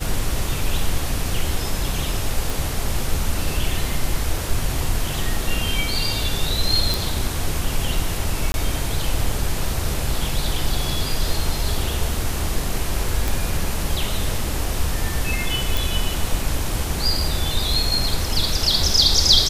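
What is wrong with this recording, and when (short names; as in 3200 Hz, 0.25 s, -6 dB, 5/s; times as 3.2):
2.5 pop
6.94 pop
8.52–8.54 gap 21 ms
13.28 pop
15.77 pop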